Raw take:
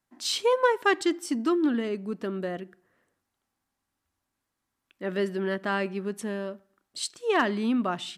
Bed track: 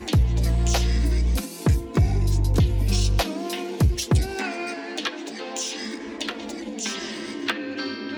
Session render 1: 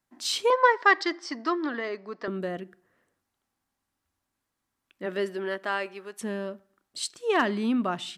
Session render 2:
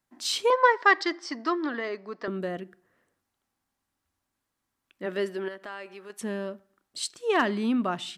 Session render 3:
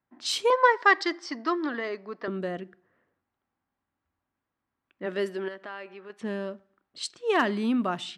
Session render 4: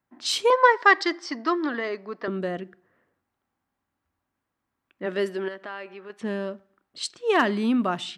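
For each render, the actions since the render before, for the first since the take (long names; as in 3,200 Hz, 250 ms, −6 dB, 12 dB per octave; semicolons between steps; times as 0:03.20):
0:00.50–0:02.28: loudspeaker in its box 430–5,600 Hz, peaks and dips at 660 Hz +5 dB, 1,100 Hz +8 dB, 1,900 Hz +9 dB, 2,800 Hz −5 dB, 4,900 Hz +9 dB; 0:05.05–0:06.20: high-pass filter 230 Hz → 710 Hz
0:05.48–0:06.10: downward compressor 2 to 1, threshold −42 dBFS
high-pass filter 43 Hz; low-pass that shuts in the quiet parts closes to 2,100 Hz, open at −24.5 dBFS
level +3 dB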